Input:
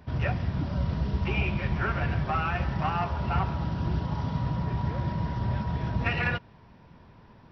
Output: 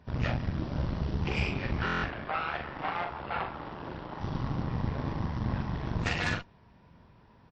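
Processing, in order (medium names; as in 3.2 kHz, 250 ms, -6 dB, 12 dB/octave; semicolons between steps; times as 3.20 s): Chebyshev shaper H 6 -10 dB, 8 -26 dB, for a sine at -13 dBFS; 2.05–4.21 s: three-band isolator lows -14 dB, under 330 Hz, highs -14 dB, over 3.7 kHz; doubling 42 ms -5.5 dB; buffer glitch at 1.85 s, samples 1024, times 7; trim -6 dB; WMA 64 kbps 44.1 kHz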